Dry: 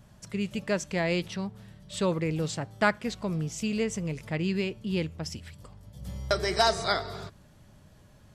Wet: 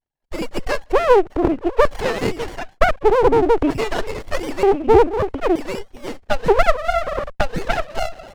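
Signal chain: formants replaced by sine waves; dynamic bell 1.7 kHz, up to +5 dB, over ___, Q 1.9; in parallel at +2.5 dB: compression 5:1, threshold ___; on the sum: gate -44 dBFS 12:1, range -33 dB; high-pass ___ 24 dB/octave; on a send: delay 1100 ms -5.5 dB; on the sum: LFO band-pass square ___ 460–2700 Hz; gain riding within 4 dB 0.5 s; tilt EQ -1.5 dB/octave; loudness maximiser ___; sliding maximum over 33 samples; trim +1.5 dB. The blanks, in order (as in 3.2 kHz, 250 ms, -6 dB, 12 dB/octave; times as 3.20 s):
-43 dBFS, -33 dBFS, 340 Hz, 0.54 Hz, +18 dB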